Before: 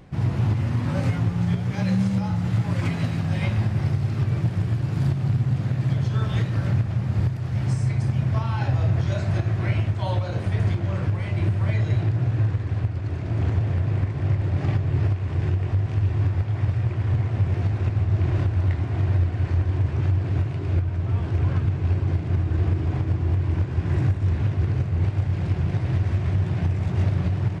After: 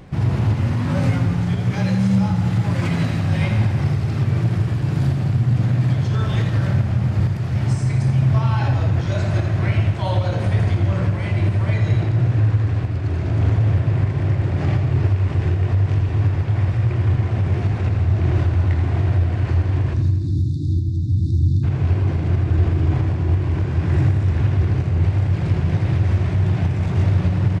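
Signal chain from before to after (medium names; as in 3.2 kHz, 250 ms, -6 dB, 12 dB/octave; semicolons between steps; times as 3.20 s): spectral selection erased 19.94–21.63 s, 350–3500 Hz; in parallel at 0 dB: peak limiter -21.5 dBFS, peak gain reduction 9.5 dB; on the sum: feedback delay 83 ms, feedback 58%, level -8.5 dB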